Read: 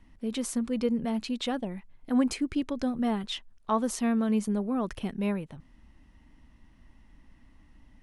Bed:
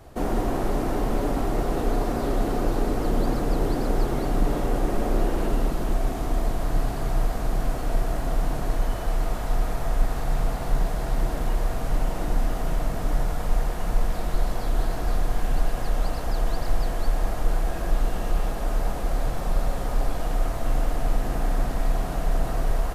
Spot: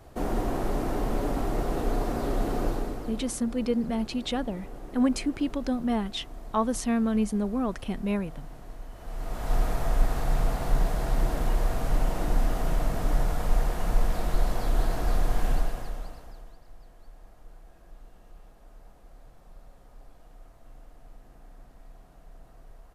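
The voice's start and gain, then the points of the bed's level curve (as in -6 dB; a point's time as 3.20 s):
2.85 s, +1.0 dB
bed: 2.67 s -3.5 dB
3.31 s -18 dB
8.91 s -18 dB
9.54 s -1 dB
15.51 s -1 dB
16.61 s -26.5 dB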